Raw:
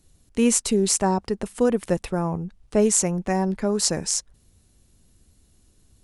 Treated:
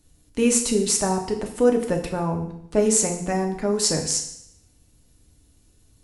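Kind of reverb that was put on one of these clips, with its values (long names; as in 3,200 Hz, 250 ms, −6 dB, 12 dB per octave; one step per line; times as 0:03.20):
feedback delay network reverb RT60 0.72 s, low-frequency decay 1.1×, high-frequency decay 1×, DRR 2.5 dB
level −1 dB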